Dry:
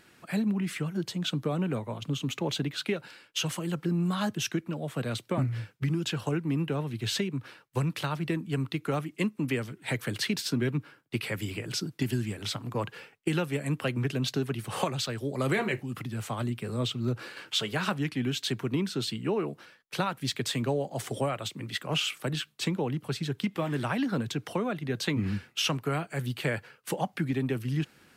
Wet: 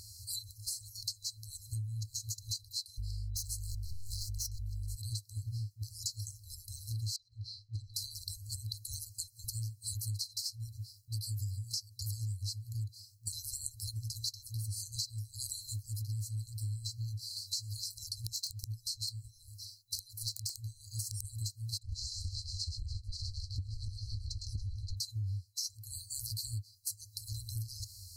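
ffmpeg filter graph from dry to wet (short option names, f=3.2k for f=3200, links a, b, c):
-filter_complex "[0:a]asettb=1/sr,asplit=3[a][b][c];[a]atrim=end=2.984[d];[b]atrim=start=2.98:end=4.96,asetpts=PTS-STARTPTS,afade=t=in:d=0.004:c=qsin,afade=t=out:st=1.976:d=0.004:c=qsin,aeval=exprs='val(0)+0.00794*(sin(2*PI*50*n/s)+sin(2*PI*2*50*n/s)/2+sin(2*PI*3*50*n/s)/3+sin(2*PI*4*50*n/s)/4+sin(2*PI*5*50*n/s)/5)':c=same,aeval=exprs='0.0447*(abs(mod(val(0)/0.0447+3,4)-2)-1)':c=same[e];[c]atrim=start=4.956[f];[d][e]acrossfade=d=0.004:c1=hsin:c2=qsin[g];[g][f]acrossfade=d=0.004:c1=qsin:c2=hsin,asettb=1/sr,asplit=3[h][i][j];[h]atrim=end=7.164[k];[i]atrim=start=7.16:end=7.94,asetpts=PTS-STARTPTS,afade=t=in:d=0.004:c=qsin,afade=t=out:st=0.776:d=0.004:c=qsin,asubboost=boost=7:cutoff=130,lowpass=f=3.3k:t=q:w=13,acompressor=threshold=-34dB:ratio=3:attack=3.2:release=140:knee=1:detection=peak[l];[j]atrim=start=7.936[m];[k][l]acrossfade=d=0.004:c1=hsin:c2=qsin[n];[n][m]acrossfade=d=0.004:c1=qsin:c2=hsin,asettb=1/sr,asplit=3[o][p][q];[o]atrim=end=18.264[r];[p]atrim=start=18.26:end=21.25,asetpts=PTS-STARTPTS,afade=t=in:d=0.004:c=qsin,afade=t=out:st=2.986:d=0.004:c=qsin,acompressor=threshold=-31dB:ratio=12:attack=3.2:release=140:knee=1:detection=peak,aeval=exprs='(mod(18.8*val(0)+1,2)-1)/18.8':c=same[s];[q]atrim=start=21.246[t];[r][s]acrossfade=d=0.004:c1=hsin:c2=qsin[u];[u][t]acrossfade=d=0.004:c1=qsin:c2=hsin,asettb=1/sr,asplit=3[v][w][x];[v]atrim=end=21.784[y];[w]atrim=start=21.78:end=24.97,asetpts=PTS-STARTPTS,afade=t=in:d=0.004:c=qsin,afade=t=out:st=3.186:d=0.004:c=qsin,highpass=430,lowpass=4.5k,aecho=1:1:108|129|272|288|576:0.447|0.355|0.126|0.266|0.316,atrim=end_sample=140679,aeval=exprs='val(0)*sin(2*PI*410*n/s)':c=same[z];[x]atrim=start=24.966[aa];[y][z]acrossfade=d=0.004:c1=hsin:c2=qsin[ab];[ab][aa]acrossfade=d=0.004:c1=qsin:c2=hsin,afftfilt=real='re*(1-between(b*sr/4096,110,4000))':imag='im*(1-between(b*sr/4096,110,4000))':win_size=4096:overlap=0.75,equalizer=f=95:t=o:w=0.61:g=6,acompressor=threshold=-51dB:ratio=8,volume=15dB"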